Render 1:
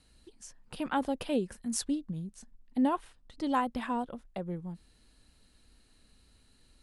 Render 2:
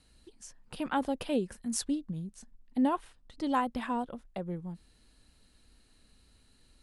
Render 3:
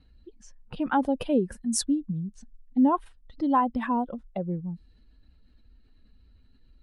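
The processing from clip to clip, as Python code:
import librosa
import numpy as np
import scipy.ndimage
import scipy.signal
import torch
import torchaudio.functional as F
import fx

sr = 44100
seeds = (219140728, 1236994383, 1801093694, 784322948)

y1 = x
y2 = fx.spec_expand(y1, sr, power=1.5)
y2 = fx.env_lowpass(y2, sr, base_hz=2800.0, full_db=-30.5)
y2 = y2 * librosa.db_to_amplitude(6.5)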